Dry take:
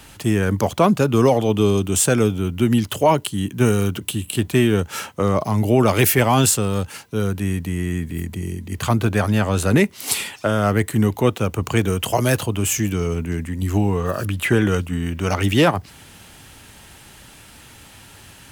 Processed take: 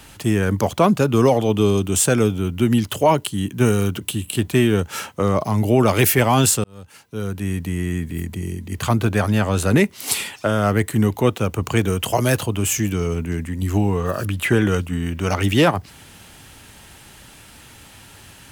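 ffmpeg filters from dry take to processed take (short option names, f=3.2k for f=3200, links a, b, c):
-filter_complex "[0:a]asplit=2[a][b];[a]atrim=end=6.64,asetpts=PTS-STARTPTS,afade=t=out:st=6.636:d=0.004:c=hsin[c];[b]atrim=start=6.64,asetpts=PTS-STARTPTS,afade=t=in:d=1.02[d];[c][d]concat=n=2:v=0:a=1"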